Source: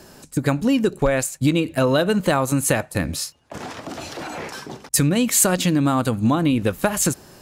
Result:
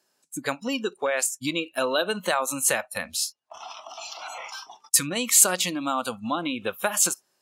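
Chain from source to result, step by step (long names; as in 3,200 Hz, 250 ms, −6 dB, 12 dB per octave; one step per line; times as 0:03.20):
meter weighting curve A
noise reduction from a noise print of the clip's start 22 dB
high-shelf EQ 5,400 Hz +8 dB
level −3.5 dB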